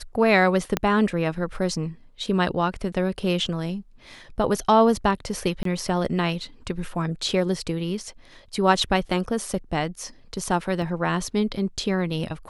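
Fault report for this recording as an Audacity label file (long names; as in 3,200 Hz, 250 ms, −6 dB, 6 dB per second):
0.770000	0.770000	click −7 dBFS
5.630000	5.650000	drop-out 23 ms
10.820000	10.820000	drop-out 2.1 ms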